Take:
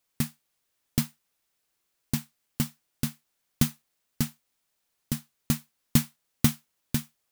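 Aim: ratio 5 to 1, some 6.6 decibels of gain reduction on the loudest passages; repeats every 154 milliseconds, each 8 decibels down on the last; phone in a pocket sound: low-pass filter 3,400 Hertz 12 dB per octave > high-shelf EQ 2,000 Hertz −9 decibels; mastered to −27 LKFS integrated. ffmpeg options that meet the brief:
ffmpeg -i in.wav -af "acompressor=threshold=-23dB:ratio=5,lowpass=3400,highshelf=frequency=2000:gain=-9,aecho=1:1:154|308|462|616|770:0.398|0.159|0.0637|0.0255|0.0102,volume=10dB" out.wav

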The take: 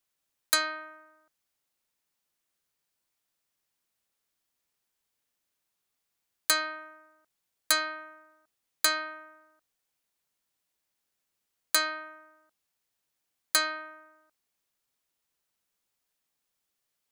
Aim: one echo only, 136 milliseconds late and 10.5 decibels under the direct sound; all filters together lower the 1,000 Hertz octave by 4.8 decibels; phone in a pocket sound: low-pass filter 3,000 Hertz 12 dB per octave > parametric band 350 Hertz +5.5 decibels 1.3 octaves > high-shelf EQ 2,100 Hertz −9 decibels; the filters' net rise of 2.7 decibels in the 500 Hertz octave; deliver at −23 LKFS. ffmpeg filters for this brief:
ffmpeg -i in.wav -af "lowpass=3000,equalizer=frequency=350:width_type=o:width=1.3:gain=5.5,equalizer=frequency=500:width_type=o:gain=4,equalizer=frequency=1000:width_type=o:gain=-4.5,highshelf=frequency=2100:gain=-9,aecho=1:1:136:0.299,volume=13.5dB" out.wav

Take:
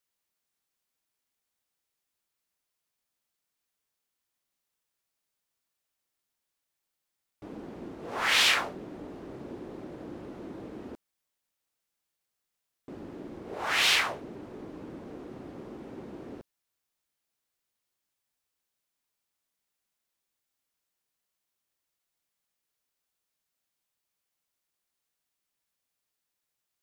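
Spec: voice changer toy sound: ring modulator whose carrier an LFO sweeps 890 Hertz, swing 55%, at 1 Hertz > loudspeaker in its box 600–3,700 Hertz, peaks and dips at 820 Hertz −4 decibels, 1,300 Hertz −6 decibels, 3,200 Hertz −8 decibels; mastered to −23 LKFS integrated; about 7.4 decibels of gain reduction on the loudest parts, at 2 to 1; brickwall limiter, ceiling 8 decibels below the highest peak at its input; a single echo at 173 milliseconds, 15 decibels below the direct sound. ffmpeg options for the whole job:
ffmpeg -i in.wav -af "acompressor=threshold=-33dB:ratio=2,alimiter=level_in=2dB:limit=-24dB:level=0:latency=1,volume=-2dB,aecho=1:1:173:0.178,aeval=exprs='val(0)*sin(2*PI*890*n/s+890*0.55/1*sin(2*PI*1*n/s))':channel_layout=same,highpass=600,equalizer=frequency=820:width_type=q:width=4:gain=-4,equalizer=frequency=1300:width_type=q:width=4:gain=-6,equalizer=frequency=3200:width_type=q:width=4:gain=-8,lowpass=frequency=3700:width=0.5412,lowpass=frequency=3700:width=1.3066,volume=23.5dB" out.wav

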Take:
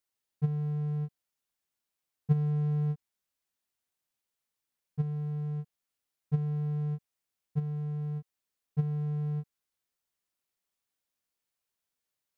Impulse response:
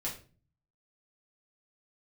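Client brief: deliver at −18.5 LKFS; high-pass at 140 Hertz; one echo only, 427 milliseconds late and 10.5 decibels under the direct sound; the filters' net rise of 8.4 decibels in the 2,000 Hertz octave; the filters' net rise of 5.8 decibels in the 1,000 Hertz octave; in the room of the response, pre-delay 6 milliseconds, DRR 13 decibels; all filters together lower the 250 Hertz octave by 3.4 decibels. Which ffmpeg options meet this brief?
-filter_complex "[0:a]highpass=140,equalizer=frequency=250:width_type=o:gain=-3.5,equalizer=frequency=1000:width_type=o:gain=7,equalizer=frequency=2000:width_type=o:gain=8,aecho=1:1:427:0.299,asplit=2[link_01][link_02];[1:a]atrim=start_sample=2205,adelay=6[link_03];[link_02][link_03]afir=irnorm=-1:irlink=0,volume=-15dB[link_04];[link_01][link_04]amix=inputs=2:normalize=0,volume=18.5dB"

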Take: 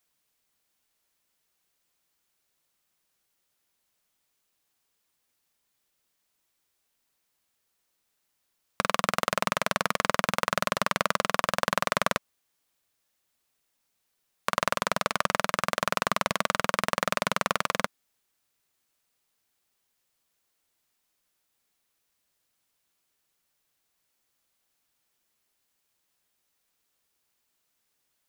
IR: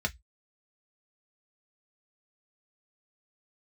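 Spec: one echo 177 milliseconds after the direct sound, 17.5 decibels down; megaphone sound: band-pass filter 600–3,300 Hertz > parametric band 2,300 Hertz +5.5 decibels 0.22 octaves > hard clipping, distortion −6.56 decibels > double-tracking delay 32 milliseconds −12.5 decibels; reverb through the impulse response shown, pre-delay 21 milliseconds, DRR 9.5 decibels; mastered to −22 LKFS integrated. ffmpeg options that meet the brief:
-filter_complex "[0:a]aecho=1:1:177:0.133,asplit=2[link_01][link_02];[1:a]atrim=start_sample=2205,adelay=21[link_03];[link_02][link_03]afir=irnorm=-1:irlink=0,volume=-15.5dB[link_04];[link_01][link_04]amix=inputs=2:normalize=0,highpass=600,lowpass=3300,equalizer=frequency=2300:width_type=o:width=0.22:gain=5.5,asoftclip=type=hard:threshold=-18.5dB,asplit=2[link_05][link_06];[link_06]adelay=32,volume=-12.5dB[link_07];[link_05][link_07]amix=inputs=2:normalize=0,volume=9.5dB"

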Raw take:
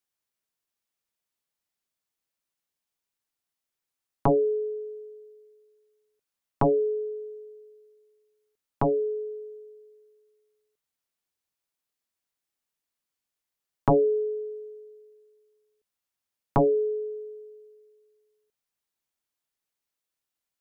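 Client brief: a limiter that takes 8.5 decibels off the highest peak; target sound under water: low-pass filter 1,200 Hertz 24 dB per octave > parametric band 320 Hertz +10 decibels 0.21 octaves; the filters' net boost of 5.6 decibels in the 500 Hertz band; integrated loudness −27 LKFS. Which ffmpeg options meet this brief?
ffmpeg -i in.wav -af "equalizer=frequency=500:width_type=o:gain=6,alimiter=limit=-18dB:level=0:latency=1,lowpass=frequency=1200:width=0.5412,lowpass=frequency=1200:width=1.3066,equalizer=frequency=320:width_type=o:width=0.21:gain=10,volume=-1.5dB" out.wav

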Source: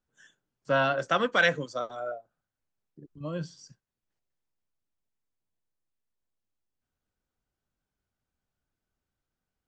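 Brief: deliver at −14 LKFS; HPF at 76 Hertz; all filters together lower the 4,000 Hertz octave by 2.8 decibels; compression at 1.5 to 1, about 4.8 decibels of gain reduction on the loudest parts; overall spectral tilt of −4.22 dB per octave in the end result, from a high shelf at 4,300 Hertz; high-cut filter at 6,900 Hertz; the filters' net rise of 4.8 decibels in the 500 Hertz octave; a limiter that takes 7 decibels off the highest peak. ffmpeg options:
ffmpeg -i in.wav -af "highpass=76,lowpass=6900,equalizer=frequency=500:width_type=o:gain=5.5,equalizer=frequency=4000:width_type=o:gain=-5.5,highshelf=frequency=4300:gain=4,acompressor=threshold=-30dB:ratio=1.5,volume=20dB,alimiter=limit=-2dB:level=0:latency=1" out.wav

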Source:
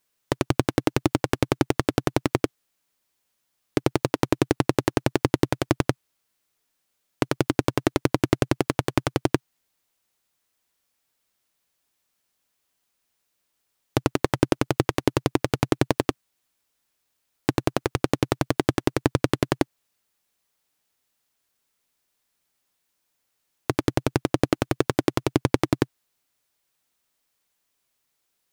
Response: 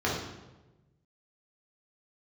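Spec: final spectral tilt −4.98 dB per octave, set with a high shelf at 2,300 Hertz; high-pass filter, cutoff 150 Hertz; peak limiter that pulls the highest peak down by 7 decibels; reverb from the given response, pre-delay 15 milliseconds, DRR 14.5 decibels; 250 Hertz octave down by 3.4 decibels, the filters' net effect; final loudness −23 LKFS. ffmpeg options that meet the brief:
-filter_complex "[0:a]highpass=150,equalizer=frequency=250:width_type=o:gain=-4,highshelf=frequency=2300:gain=-3.5,alimiter=limit=-11dB:level=0:latency=1,asplit=2[link_01][link_02];[1:a]atrim=start_sample=2205,adelay=15[link_03];[link_02][link_03]afir=irnorm=-1:irlink=0,volume=-26.5dB[link_04];[link_01][link_04]amix=inputs=2:normalize=0,volume=10dB"

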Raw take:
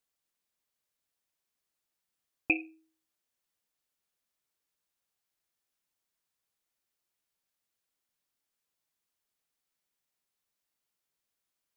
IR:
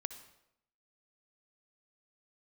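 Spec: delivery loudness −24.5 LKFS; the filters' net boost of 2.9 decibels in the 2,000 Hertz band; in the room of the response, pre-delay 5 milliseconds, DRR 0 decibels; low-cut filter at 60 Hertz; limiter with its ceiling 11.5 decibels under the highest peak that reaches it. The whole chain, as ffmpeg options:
-filter_complex "[0:a]highpass=60,equalizer=frequency=2000:width_type=o:gain=4,alimiter=limit=-21.5dB:level=0:latency=1,asplit=2[link_01][link_02];[1:a]atrim=start_sample=2205,adelay=5[link_03];[link_02][link_03]afir=irnorm=-1:irlink=0,volume=1.5dB[link_04];[link_01][link_04]amix=inputs=2:normalize=0,volume=11dB"

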